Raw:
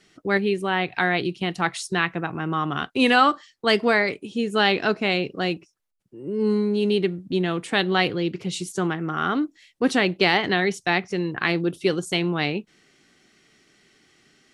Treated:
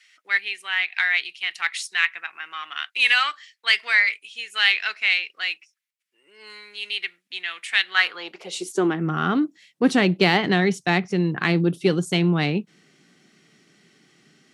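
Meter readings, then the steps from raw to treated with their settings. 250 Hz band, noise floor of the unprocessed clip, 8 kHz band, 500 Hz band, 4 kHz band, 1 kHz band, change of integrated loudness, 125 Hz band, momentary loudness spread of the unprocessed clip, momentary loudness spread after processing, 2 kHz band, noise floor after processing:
-0.5 dB, -65 dBFS, +0.5 dB, -4.0 dB, +2.5 dB, -4.5 dB, +1.0 dB, +2.5 dB, 8 LU, 13 LU, +3.5 dB, -73 dBFS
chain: added harmonics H 6 -33 dB, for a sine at -4.5 dBFS; high-pass sweep 2100 Hz -> 160 Hz, 7.86–9.11

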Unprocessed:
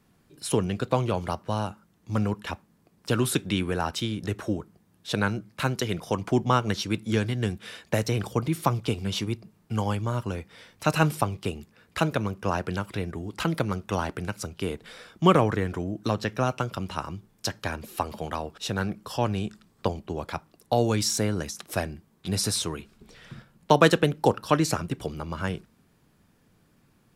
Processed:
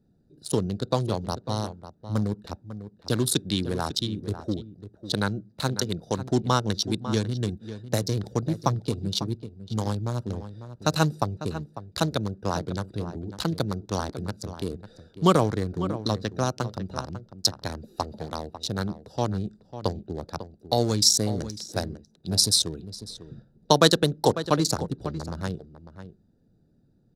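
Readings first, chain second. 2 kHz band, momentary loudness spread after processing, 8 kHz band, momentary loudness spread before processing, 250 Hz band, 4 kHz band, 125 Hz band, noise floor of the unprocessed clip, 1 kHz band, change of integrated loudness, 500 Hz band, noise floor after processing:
-4.5 dB, 15 LU, +5.0 dB, 12 LU, 0.0 dB, +5.5 dB, 0.0 dB, -64 dBFS, -1.5 dB, +0.5 dB, -0.5 dB, -63 dBFS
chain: Wiener smoothing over 41 samples; resonant high shelf 3300 Hz +7.5 dB, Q 3; outdoor echo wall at 94 m, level -12 dB

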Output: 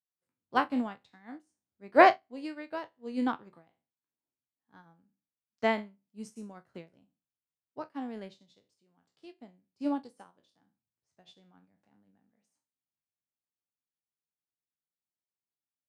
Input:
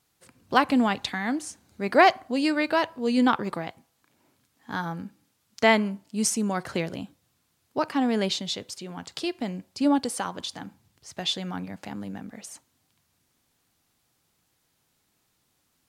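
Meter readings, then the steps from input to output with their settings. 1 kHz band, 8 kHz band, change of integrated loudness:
-4.5 dB, -28.5 dB, -3.5 dB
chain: spectral trails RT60 0.34 s; HPF 85 Hz; high shelf 2000 Hz -9 dB; upward expander 2.5:1, over -36 dBFS

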